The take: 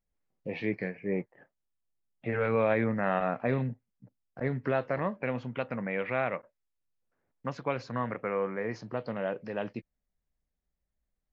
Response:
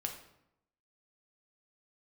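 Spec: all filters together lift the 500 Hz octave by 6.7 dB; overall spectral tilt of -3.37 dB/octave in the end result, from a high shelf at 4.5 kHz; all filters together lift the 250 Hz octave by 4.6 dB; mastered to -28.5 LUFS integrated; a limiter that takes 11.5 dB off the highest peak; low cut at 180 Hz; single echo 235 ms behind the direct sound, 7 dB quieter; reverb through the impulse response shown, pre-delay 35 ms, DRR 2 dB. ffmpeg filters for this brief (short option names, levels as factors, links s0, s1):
-filter_complex "[0:a]highpass=180,equalizer=f=250:t=o:g=5.5,equalizer=f=500:t=o:g=6.5,highshelf=f=4500:g=6,alimiter=limit=0.0891:level=0:latency=1,aecho=1:1:235:0.447,asplit=2[s0][s1];[1:a]atrim=start_sample=2205,adelay=35[s2];[s1][s2]afir=irnorm=-1:irlink=0,volume=0.75[s3];[s0][s3]amix=inputs=2:normalize=0,volume=1.12"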